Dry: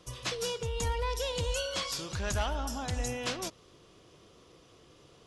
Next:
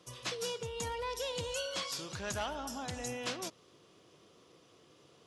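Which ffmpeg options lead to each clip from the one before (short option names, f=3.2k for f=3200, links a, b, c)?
-af "highpass=130,volume=-3.5dB"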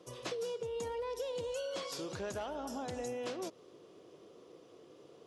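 -af "equalizer=f=430:t=o:w=1.9:g=12.5,acompressor=threshold=-32dB:ratio=6,volume=-4dB"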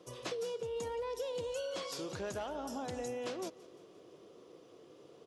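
-af "aecho=1:1:174|348|522|696:0.0891|0.0481|0.026|0.014"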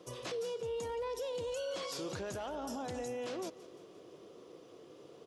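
-af "alimiter=level_in=10.5dB:limit=-24dB:level=0:latency=1:release=19,volume=-10.5dB,volume=2.5dB"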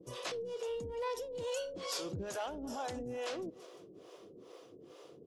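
-filter_complex "[0:a]asplit=2[a][b];[b]aeval=exprs='clip(val(0),-1,0.0119)':c=same,volume=-11dB[c];[a][c]amix=inputs=2:normalize=0,acrossover=split=420[d][e];[d]aeval=exprs='val(0)*(1-1/2+1/2*cos(2*PI*2.3*n/s))':c=same[f];[e]aeval=exprs='val(0)*(1-1/2-1/2*cos(2*PI*2.3*n/s))':c=same[g];[f][g]amix=inputs=2:normalize=0,volume=3dB"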